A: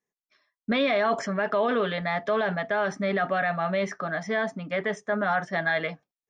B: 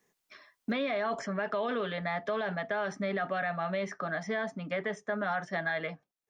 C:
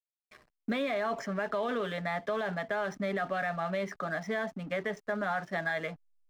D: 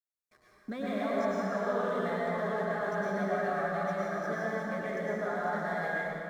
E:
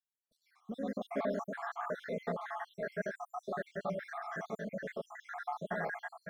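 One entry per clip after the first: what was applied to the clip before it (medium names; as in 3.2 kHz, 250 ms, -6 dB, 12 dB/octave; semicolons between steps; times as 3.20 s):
three bands compressed up and down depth 70%; trim -7 dB
hysteresis with a dead band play -47 dBFS
peaking EQ 2.8 kHz -11 dB 0.81 oct; plate-style reverb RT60 3.2 s, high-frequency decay 0.65×, pre-delay 90 ms, DRR -7.5 dB; trim -6.5 dB
random holes in the spectrogram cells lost 68%; trim -2 dB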